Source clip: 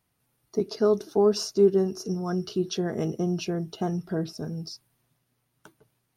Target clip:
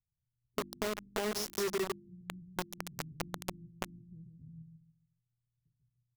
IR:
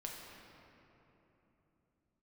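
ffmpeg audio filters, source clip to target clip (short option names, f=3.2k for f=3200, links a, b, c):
-filter_complex "[0:a]asettb=1/sr,asplit=3[a][b][c];[a]atrim=end=1.224[d];[b]atrim=start=1.22:end=1.67,asetpts=PTS-STARTPTS,afade=t=in:d=0.004:c=qsin,afade=t=out:st=0.446:d=0.004:c=qsin,highshelf=f=2.5k:g=8.5[e];[c]atrim=start=1.666[f];[d][e]acrossfade=d=0.004:c1=hsin:c2=qsin[g];[g][f]acrossfade=d=0.004:c1=qsin:c2=hsin,asplit=2[h][i];[i]aecho=0:1:141|282|423|564:0.501|0.145|0.0421|0.0122[j];[h][j]amix=inputs=2:normalize=0,flanger=delay=6.2:depth=2.8:regen=53:speed=0.38:shape=triangular,acrossover=split=120[k][l];[l]acrusher=bits=3:mix=0:aa=0.000001[m];[k][m]amix=inputs=2:normalize=0,bandreject=f=49.48:t=h:w=4,bandreject=f=98.96:t=h:w=4,bandreject=f=148.44:t=h:w=4,bandreject=f=197.92:t=h:w=4,bandreject=f=247.4:t=h:w=4,bandreject=f=296.88:t=h:w=4,bandreject=f=346.36:t=h:w=4,acompressor=threshold=-33dB:ratio=4"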